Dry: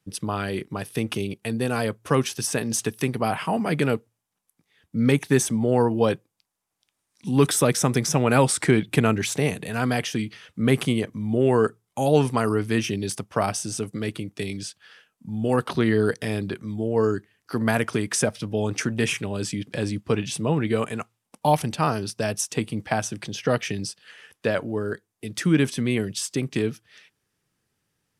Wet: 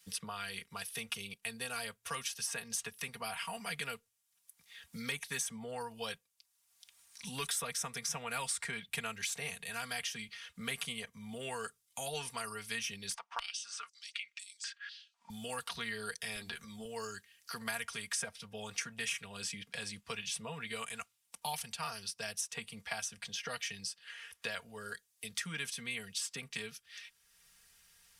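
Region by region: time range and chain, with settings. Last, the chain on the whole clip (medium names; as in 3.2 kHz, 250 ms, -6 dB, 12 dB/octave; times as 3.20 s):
13.14–15.30 s: distance through air 110 m + step-sequenced high-pass 4 Hz 880–7600 Hz
16.35–16.85 s: high-pass 45 Hz + doubling 13 ms -5.5 dB + transient shaper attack -3 dB, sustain +6 dB
whole clip: amplifier tone stack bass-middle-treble 10-0-10; comb 4.3 ms, depth 68%; three bands compressed up and down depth 70%; trim -7 dB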